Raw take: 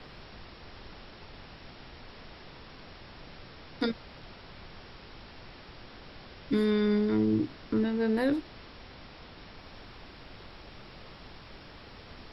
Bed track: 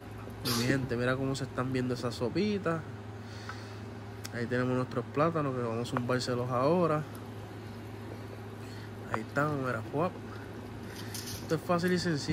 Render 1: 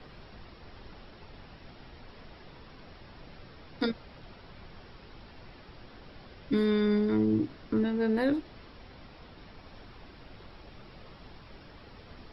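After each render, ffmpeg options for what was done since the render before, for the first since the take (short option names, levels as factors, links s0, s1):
-af "afftdn=nr=6:nf=-50"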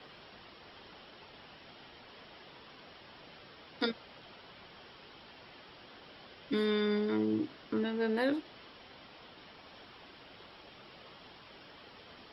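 -af "highpass=f=420:p=1,equalizer=f=3100:t=o:w=0.31:g=6"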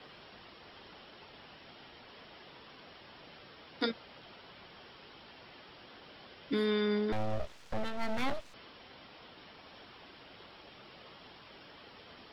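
-filter_complex "[0:a]asettb=1/sr,asplit=3[s0][s1][s2];[s0]atrim=end=7.124[s3];[s1]atrim=start=7.12:end=8.54,asetpts=PTS-STARTPTS,afade=t=in:d=0.004:c=qsin,afade=t=out:st=1.416:d=0.004:c=qsin,aeval=exprs='abs(val(0))':c=same[s4];[s2]atrim=start=8.536[s5];[s3][s4]acrossfade=d=0.004:c1=hsin:c2=qsin[s6];[s6][s5]acrossfade=d=0.004:c1=qsin:c2=hsin"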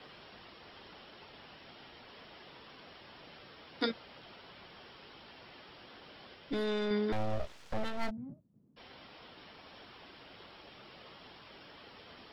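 -filter_complex "[0:a]asettb=1/sr,asplit=3[s0][s1][s2];[s0]atrim=end=6.364[s3];[s1]atrim=start=6.36:end=6.91,asetpts=PTS-STARTPTS,afade=t=in:d=0.004:c=qsin,afade=t=out:st=0.546:d=0.004:c=qsin,aeval=exprs='(tanh(20*val(0)+0.45)-tanh(0.45))/20':c=same[s4];[s2]atrim=start=6.906[s5];[s3][s4]acrossfade=d=0.004:c1=hsin:c2=qsin[s6];[s6][s5]acrossfade=d=0.004:c1=qsin:c2=hsin,asplit=3[s7][s8][s9];[s7]afade=t=out:st=8.09:d=0.02[s10];[s8]asuperpass=centerf=160:order=4:qfactor=1.3,afade=t=in:st=8.09:d=0.02,afade=t=out:st=8.76:d=0.02[s11];[s9]afade=t=in:st=8.76:d=0.02[s12];[s10][s11][s12]amix=inputs=3:normalize=0"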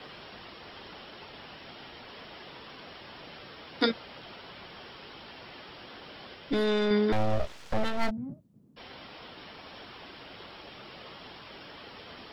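-af "volume=2.24"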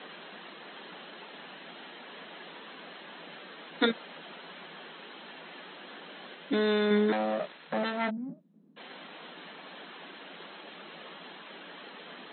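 -af "afftfilt=real='re*between(b*sr/4096,160,4200)':imag='im*between(b*sr/4096,160,4200)':win_size=4096:overlap=0.75,equalizer=f=1700:w=4.8:g=4"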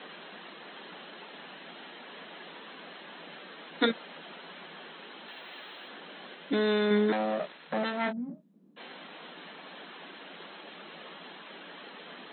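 -filter_complex "[0:a]asettb=1/sr,asplit=3[s0][s1][s2];[s0]atrim=end=5.284[s3];[s1]atrim=start=5.28:end=5.88,asetpts=PTS-STARTPTS,afade=t=in:d=0.004:c=qsin,afade=t=out:st=0.596:d=0.004:c=qsin,aemphasis=mode=production:type=bsi[s4];[s2]atrim=start=5.876[s5];[s3][s4]acrossfade=d=0.004:c1=hsin:c2=qsin[s6];[s6][s5]acrossfade=d=0.004:c1=qsin:c2=hsin,asettb=1/sr,asplit=3[s7][s8][s9];[s7]atrim=end=8.044[s10];[s8]atrim=start=8.04:end=8.9,asetpts=PTS-STARTPTS,afade=t=in:d=0.004:c=qsin,afade=t=out:st=0.856:d=0.004:c=qsin,asplit=2[s11][s12];[s12]adelay=21,volume=0.501[s13];[s11][s13]amix=inputs=2:normalize=0,atrim=end_sample=37926[s14];[s9]atrim=start=8.896[s15];[s10][s14]acrossfade=d=0.004:c1=hsin:c2=qsin[s16];[s16][s15]acrossfade=d=0.004:c1=qsin:c2=hsin"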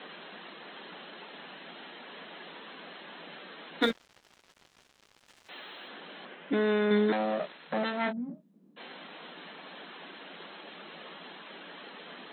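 -filter_complex "[0:a]asplit=3[s0][s1][s2];[s0]afade=t=out:st=3.81:d=0.02[s3];[s1]aeval=exprs='sgn(val(0))*max(abs(val(0))-0.00794,0)':c=same,afade=t=in:st=3.81:d=0.02,afade=t=out:st=5.48:d=0.02[s4];[s2]afade=t=in:st=5.48:d=0.02[s5];[s3][s4][s5]amix=inputs=3:normalize=0,asettb=1/sr,asplit=3[s6][s7][s8];[s6]atrim=end=6.254[s9];[s7]atrim=start=6.25:end=6.91,asetpts=PTS-STARTPTS,afade=t=in:d=0.004:c=qsin,afade=t=out:st=0.656:d=0.004:c=qsin,lowpass=f=3000:w=0.5412,lowpass=f=3000:w=1.3066[s10];[s8]atrim=start=6.906[s11];[s9][s10]acrossfade=d=0.004:c1=hsin:c2=qsin[s12];[s12][s11]acrossfade=d=0.004:c1=qsin:c2=hsin"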